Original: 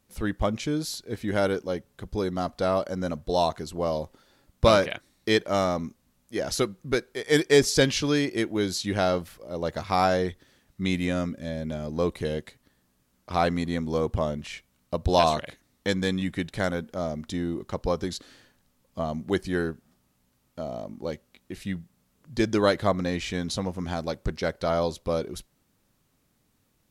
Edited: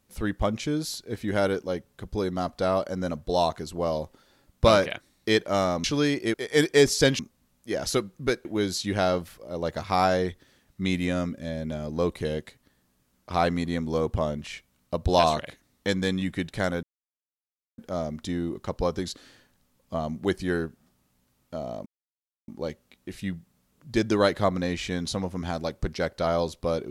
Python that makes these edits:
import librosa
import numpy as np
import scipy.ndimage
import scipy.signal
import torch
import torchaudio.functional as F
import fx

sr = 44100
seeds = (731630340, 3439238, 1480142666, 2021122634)

y = fx.edit(x, sr, fx.swap(start_s=5.84, length_s=1.26, other_s=7.95, other_length_s=0.5),
    fx.insert_silence(at_s=16.83, length_s=0.95),
    fx.insert_silence(at_s=20.91, length_s=0.62), tone=tone)